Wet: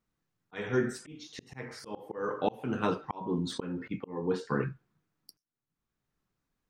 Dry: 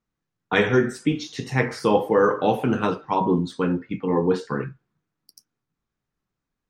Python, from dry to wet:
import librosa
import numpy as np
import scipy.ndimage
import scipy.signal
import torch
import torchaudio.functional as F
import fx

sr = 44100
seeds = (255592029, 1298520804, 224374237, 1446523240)

y = fx.auto_swell(x, sr, attack_ms=760.0)
y = fx.env_flatten(y, sr, amount_pct=50, at=(3.41, 3.88))